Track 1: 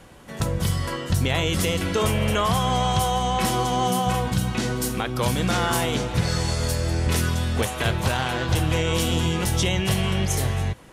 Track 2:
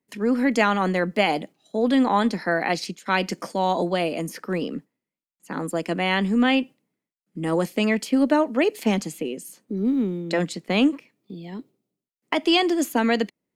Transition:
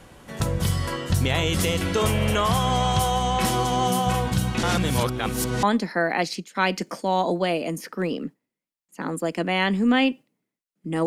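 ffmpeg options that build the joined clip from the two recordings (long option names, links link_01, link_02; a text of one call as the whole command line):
ffmpeg -i cue0.wav -i cue1.wav -filter_complex "[0:a]apad=whole_dur=11.06,atrim=end=11.06,asplit=2[link_01][link_02];[link_01]atrim=end=4.632[link_03];[link_02]atrim=start=4.628:end=5.632,asetpts=PTS-STARTPTS,areverse[link_04];[1:a]atrim=start=2.138:end=7.57[link_05];[link_03][link_04]acrossfade=duration=0.004:curve1=hsin:curve2=hsin[link_06];[link_06][link_05]acrossfade=duration=0.004:curve1=hsin:curve2=hsin" out.wav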